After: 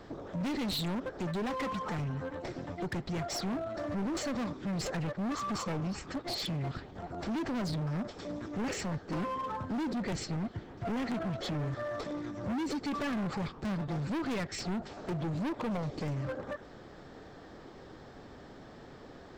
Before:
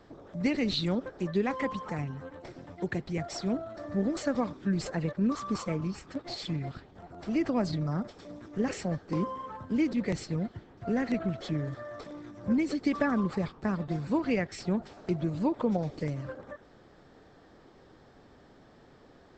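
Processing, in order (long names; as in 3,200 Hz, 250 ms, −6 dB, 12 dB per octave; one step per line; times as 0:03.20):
in parallel at +0.5 dB: downward compressor, threshold −39 dBFS, peak gain reduction 15.5 dB
on the sum: gain into a clipping stage and back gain 31.5 dB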